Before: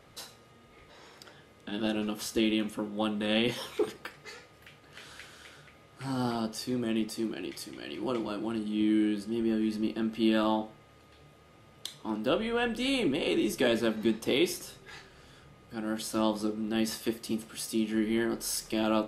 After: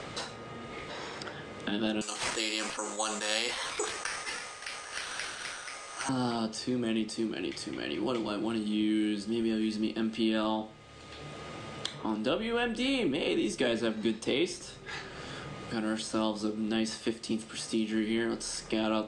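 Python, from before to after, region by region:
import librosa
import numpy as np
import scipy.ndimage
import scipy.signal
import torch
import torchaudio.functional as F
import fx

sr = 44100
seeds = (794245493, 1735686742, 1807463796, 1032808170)

y = fx.chain(x, sr, fx.highpass(hz=810.0, slope=12),
    fx.resample_bad(factor=6, down='none', up='zero_stuff'),
    fx.sustainer(db_per_s=59.0), at=(2.01, 6.09))
y = scipy.signal.sosfilt(scipy.signal.ellip(4, 1.0, 50, 8700.0, 'lowpass', fs=sr, output='sos'), y)
y = fx.band_squash(y, sr, depth_pct=70)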